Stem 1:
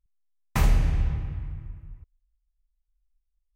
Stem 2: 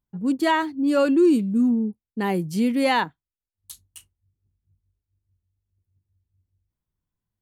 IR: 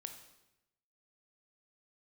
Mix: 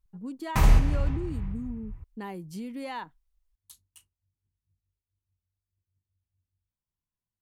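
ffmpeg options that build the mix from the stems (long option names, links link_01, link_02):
-filter_complex "[0:a]volume=3dB[link_01];[1:a]acompressor=threshold=-24dB:ratio=6,volume=-10.5dB,asplit=2[link_02][link_03];[link_03]apad=whole_len=161147[link_04];[link_01][link_04]sidechaincompress=threshold=-39dB:ratio=8:attack=16:release=135[link_05];[link_05][link_02]amix=inputs=2:normalize=0,equalizer=frequency=1000:width=2.4:gain=4"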